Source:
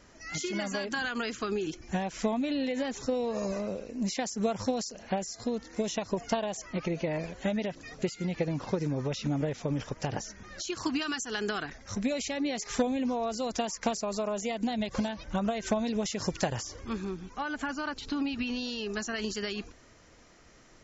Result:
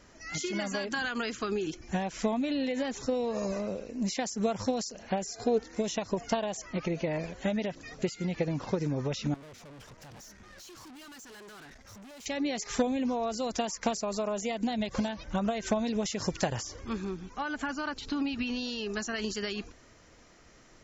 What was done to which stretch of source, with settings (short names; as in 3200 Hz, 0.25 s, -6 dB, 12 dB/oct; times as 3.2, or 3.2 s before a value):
5.24–5.64 small resonant body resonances 430/730/1500/2400 Hz, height 13 dB
9.34–12.26 tube stage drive 48 dB, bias 0.55